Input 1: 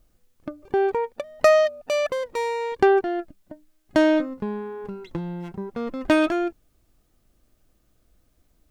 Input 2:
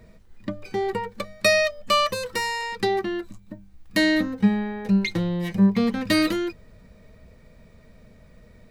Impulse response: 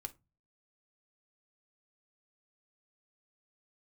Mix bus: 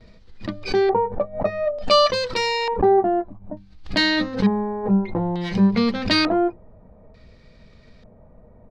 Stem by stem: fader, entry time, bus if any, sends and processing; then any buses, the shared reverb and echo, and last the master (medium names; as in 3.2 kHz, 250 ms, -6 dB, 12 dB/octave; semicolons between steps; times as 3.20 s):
+2.0 dB, 0.00 s, no send, steep low-pass 4.8 kHz 96 dB/octave; peak limiter -16.5 dBFS, peak gain reduction 10.5 dB
-0.5 dB, 7.1 ms, polarity flipped, send -15 dB, none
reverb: on, RT60 0.25 s, pre-delay 4 ms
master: LFO low-pass square 0.56 Hz 820–4600 Hz; swell ahead of each attack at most 140 dB/s